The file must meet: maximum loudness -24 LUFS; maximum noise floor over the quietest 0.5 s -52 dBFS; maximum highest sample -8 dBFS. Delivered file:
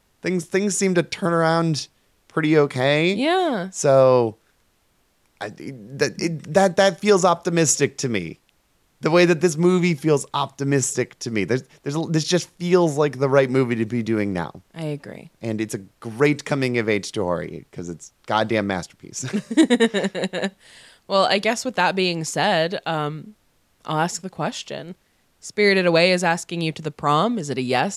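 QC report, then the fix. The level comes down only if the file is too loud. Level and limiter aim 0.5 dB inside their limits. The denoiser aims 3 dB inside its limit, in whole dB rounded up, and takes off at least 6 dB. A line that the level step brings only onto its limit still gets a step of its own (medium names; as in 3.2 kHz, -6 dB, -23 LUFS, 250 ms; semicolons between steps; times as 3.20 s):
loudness -21.0 LUFS: fail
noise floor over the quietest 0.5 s -64 dBFS: pass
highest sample -4.5 dBFS: fail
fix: trim -3.5 dB; peak limiter -8.5 dBFS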